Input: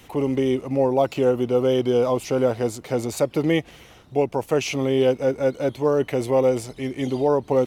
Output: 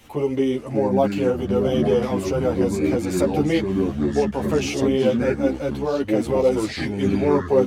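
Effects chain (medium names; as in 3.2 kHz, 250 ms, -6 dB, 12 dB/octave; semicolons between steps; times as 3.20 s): ever faster or slower copies 533 ms, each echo -5 st, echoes 2; three-phase chorus; trim +2 dB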